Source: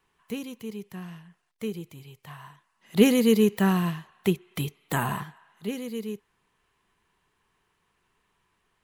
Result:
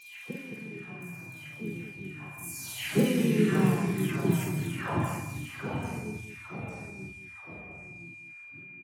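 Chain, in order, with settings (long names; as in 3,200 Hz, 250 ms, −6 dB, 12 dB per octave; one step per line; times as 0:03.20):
every frequency bin delayed by itself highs early, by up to 593 ms
high-pass filter 59 Hz 6 dB per octave
delay with pitch and tempo change per echo 190 ms, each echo −2 semitones, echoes 3, each echo −6 dB
pitch-shifted copies added −7 semitones −8 dB, −4 semitones −4 dB
steady tone 2,400 Hz −44 dBFS
loudspeakers that aren't time-aligned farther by 16 metres −3 dB, 75 metres −9 dB
level −6.5 dB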